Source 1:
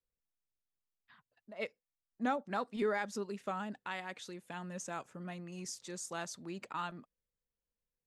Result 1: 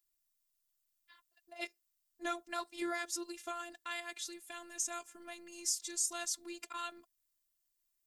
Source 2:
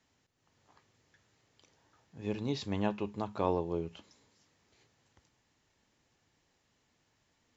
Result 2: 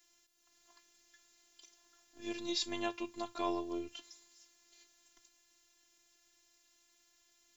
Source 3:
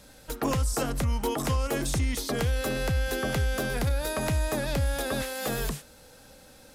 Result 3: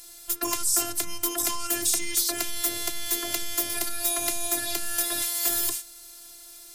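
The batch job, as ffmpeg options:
-af "crystalizer=i=6:c=0,afftfilt=real='hypot(re,im)*cos(PI*b)':imag='0':win_size=512:overlap=0.75,volume=0.794"

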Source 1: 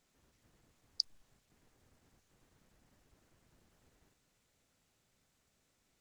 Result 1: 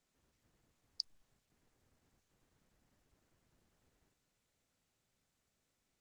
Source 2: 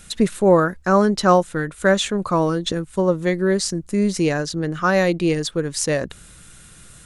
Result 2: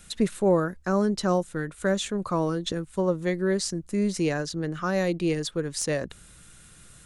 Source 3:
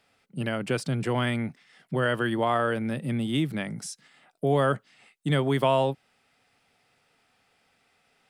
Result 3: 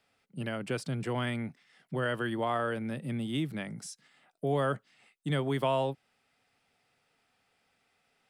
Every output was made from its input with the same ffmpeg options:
-filter_complex "[0:a]acrossover=split=520|4600[s0][s1][s2];[s1]alimiter=limit=0.188:level=0:latency=1:release=465[s3];[s2]aeval=exprs='clip(val(0),-1,0.168)':c=same[s4];[s0][s3][s4]amix=inputs=3:normalize=0,volume=0.501"

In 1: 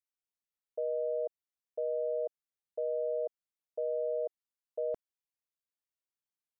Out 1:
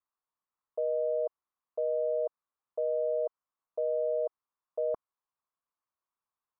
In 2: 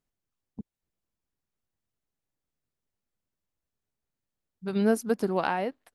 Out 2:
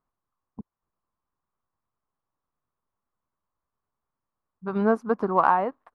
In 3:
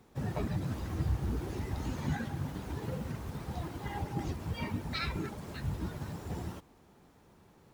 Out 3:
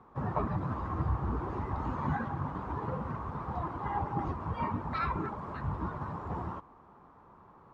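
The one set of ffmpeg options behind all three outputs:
-af "crystalizer=i=4.5:c=0,lowpass=f=1100:t=q:w=4.5,aeval=exprs='0.531*(cos(1*acos(clip(val(0)/0.531,-1,1)))-cos(1*PI/2))+0.00376*(cos(2*acos(clip(val(0)/0.531,-1,1)))-cos(2*PI/2))+0.00335*(cos(6*acos(clip(val(0)/0.531,-1,1)))-cos(6*PI/2))+0.00335*(cos(8*acos(clip(val(0)/0.531,-1,1)))-cos(8*PI/2))':c=same"

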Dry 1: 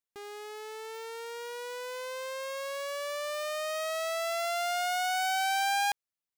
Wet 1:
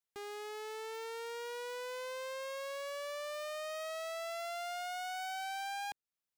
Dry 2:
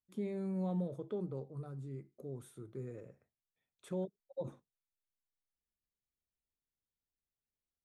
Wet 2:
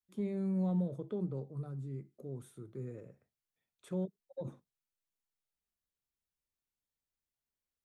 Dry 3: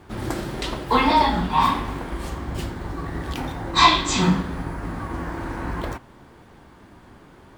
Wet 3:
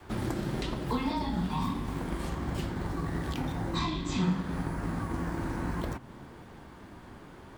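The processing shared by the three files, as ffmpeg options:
-filter_complex "[0:a]acrossover=split=370|4800[s0][s1][s2];[s0]acompressor=threshold=0.02:ratio=4[s3];[s1]acompressor=threshold=0.0112:ratio=4[s4];[s2]acompressor=threshold=0.00251:ratio=4[s5];[s3][s4][s5]amix=inputs=3:normalize=0,aeval=exprs='0.0944*(cos(1*acos(clip(val(0)/0.0944,-1,1)))-cos(1*PI/2))+0.0106*(cos(2*acos(clip(val(0)/0.0944,-1,1)))-cos(2*PI/2))+0.0015*(cos(7*acos(clip(val(0)/0.0944,-1,1)))-cos(7*PI/2))+0.000944*(cos(8*acos(clip(val(0)/0.0944,-1,1)))-cos(8*PI/2))':c=same,adynamicequalizer=threshold=0.00355:dfrequency=170:dqfactor=1:tfrequency=170:tqfactor=1:attack=5:release=100:ratio=0.375:range=3:mode=boostabove:tftype=bell"

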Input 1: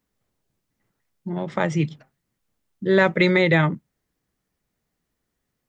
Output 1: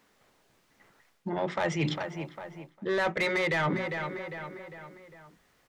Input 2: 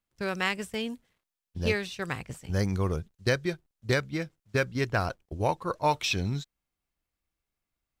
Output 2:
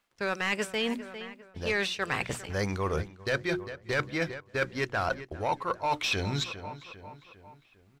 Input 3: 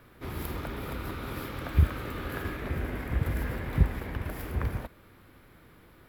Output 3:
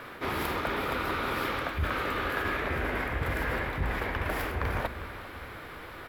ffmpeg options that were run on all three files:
-filter_complex "[0:a]asubboost=boost=2.5:cutoff=96,asplit=2[s0][s1];[s1]alimiter=limit=0.224:level=0:latency=1:release=378,volume=0.794[s2];[s0][s2]amix=inputs=2:normalize=0,bandreject=f=60:t=h:w=6,bandreject=f=120:t=h:w=6,bandreject=f=180:t=h:w=6,bandreject=f=240:t=h:w=6,bandreject=f=300:t=h:w=6,bandreject=f=360:t=h:w=6,asplit=2[s3][s4];[s4]highpass=f=720:p=1,volume=8.91,asoftclip=type=tanh:threshold=0.75[s5];[s3][s5]amix=inputs=2:normalize=0,lowpass=f=2900:p=1,volume=0.501,asplit=2[s6][s7];[s7]adelay=402,lowpass=f=3500:p=1,volume=0.0891,asplit=2[s8][s9];[s9]adelay=402,lowpass=f=3500:p=1,volume=0.51,asplit=2[s10][s11];[s11]adelay=402,lowpass=f=3500:p=1,volume=0.51,asplit=2[s12][s13];[s13]adelay=402,lowpass=f=3500:p=1,volume=0.51[s14];[s6][s8][s10][s12][s14]amix=inputs=5:normalize=0,areverse,acompressor=threshold=0.0398:ratio=5,areverse"

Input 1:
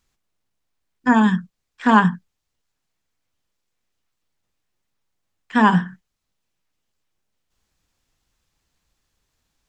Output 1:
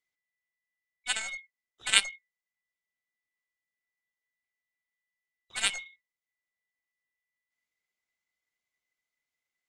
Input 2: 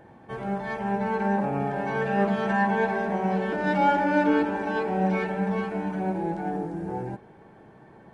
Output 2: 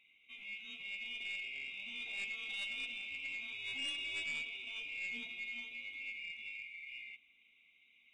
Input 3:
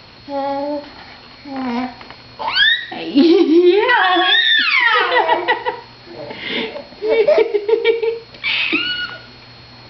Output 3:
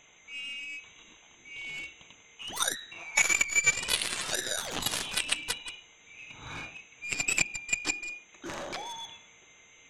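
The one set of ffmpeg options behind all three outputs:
-af "afftfilt=real='real(if(lt(b,920),b+92*(1-2*mod(floor(b/92),2)),b),0)':imag='imag(if(lt(b,920),b+92*(1-2*mod(floor(b/92),2)),b),0)':win_size=2048:overlap=0.75,aeval=exprs='1*(cos(1*acos(clip(val(0)/1,-1,1)))-cos(1*PI/2))+0.398*(cos(3*acos(clip(val(0)/1,-1,1)))-cos(3*PI/2))+0.00708*(cos(6*acos(clip(val(0)/1,-1,1)))-cos(6*PI/2))':c=same,volume=0.708"

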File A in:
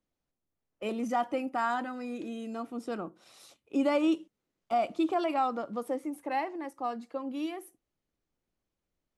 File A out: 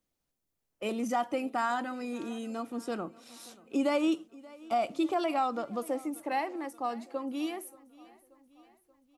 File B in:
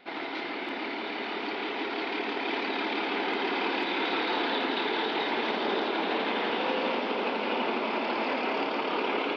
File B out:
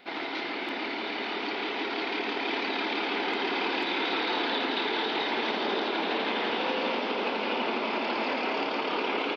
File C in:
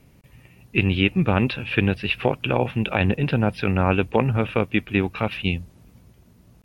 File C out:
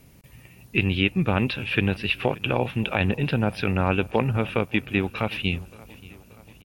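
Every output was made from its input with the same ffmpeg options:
-filter_complex "[0:a]highshelf=f=4500:g=7.5,asplit=2[s0][s1];[s1]acompressor=threshold=0.0398:ratio=6,volume=0.794[s2];[s0][s2]amix=inputs=2:normalize=0,aecho=1:1:581|1162|1743|2324:0.0794|0.0453|0.0258|0.0147,volume=0.596"

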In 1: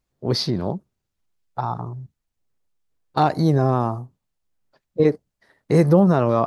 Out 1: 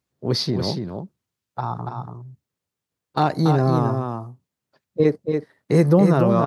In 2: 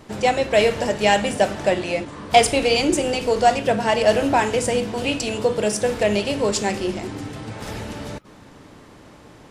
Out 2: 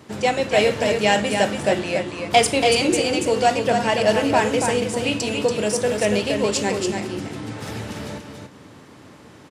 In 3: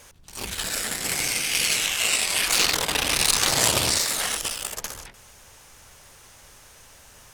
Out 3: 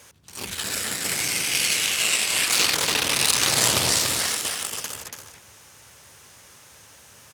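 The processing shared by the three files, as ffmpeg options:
-af "highpass=f=77:w=0.5412,highpass=f=77:w=1.3066,equalizer=f=720:w=1.6:g=-2.5,aecho=1:1:284:0.531"

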